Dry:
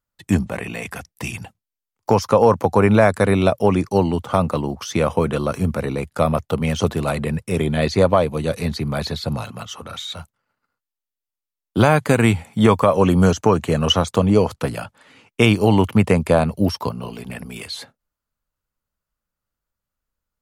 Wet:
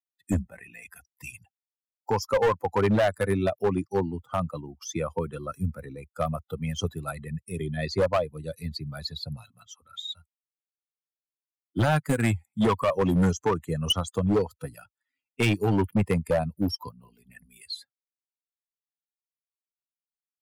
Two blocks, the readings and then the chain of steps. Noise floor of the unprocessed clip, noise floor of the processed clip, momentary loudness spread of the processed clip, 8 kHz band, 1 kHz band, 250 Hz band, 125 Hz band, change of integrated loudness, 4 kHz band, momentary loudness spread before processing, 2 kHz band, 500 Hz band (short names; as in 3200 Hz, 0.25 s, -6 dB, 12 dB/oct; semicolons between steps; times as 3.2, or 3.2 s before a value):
under -85 dBFS, under -85 dBFS, 18 LU, -7.0 dB, -9.5 dB, -9.5 dB, -9.0 dB, -9.0 dB, -7.0 dB, 16 LU, -8.5 dB, -9.0 dB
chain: per-bin expansion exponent 2; overloaded stage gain 16.5 dB; gain -1.5 dB